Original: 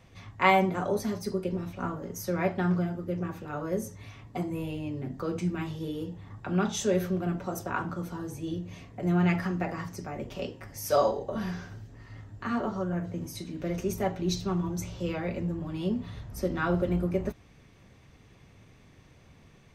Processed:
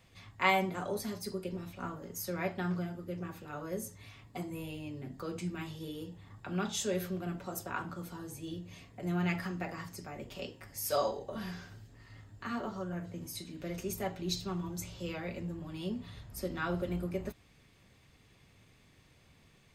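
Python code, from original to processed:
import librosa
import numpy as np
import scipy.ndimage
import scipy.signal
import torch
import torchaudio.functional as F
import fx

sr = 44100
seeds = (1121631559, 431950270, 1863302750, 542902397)

y = fx.high_shelf(x, sr, hz=2400.0, db=10.0)
y = fx.notch(y, sr, hz=5900.0, q=7.3)
y = y * 10.0 ** (-8.0 / 20.0)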